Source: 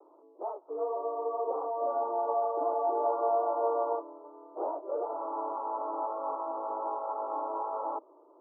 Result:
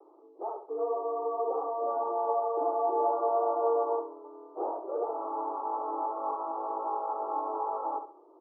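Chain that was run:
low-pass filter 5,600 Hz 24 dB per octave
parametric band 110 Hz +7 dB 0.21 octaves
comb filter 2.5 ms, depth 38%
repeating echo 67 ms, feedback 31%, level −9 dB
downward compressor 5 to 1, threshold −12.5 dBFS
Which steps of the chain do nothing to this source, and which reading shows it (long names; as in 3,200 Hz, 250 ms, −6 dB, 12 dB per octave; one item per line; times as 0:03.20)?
low-pass filter 5,600 Hz: nothing at its input above 1,400 Hz
parametric band 110 Hz: nothing at its input below 270 Hz
downward compressor, threshold −12.5 dBFS: peak of its input −17.5 dBFS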